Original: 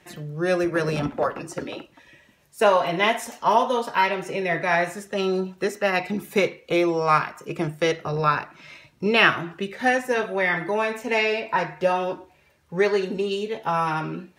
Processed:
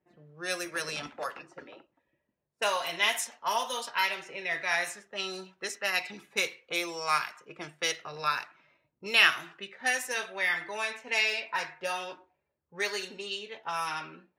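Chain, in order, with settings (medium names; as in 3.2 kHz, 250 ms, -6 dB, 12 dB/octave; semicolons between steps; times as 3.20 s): level-controlled noise filter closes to 400 Hz, open at -18 dBFS; pre-emphasis filter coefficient 0.97; trim +7 dB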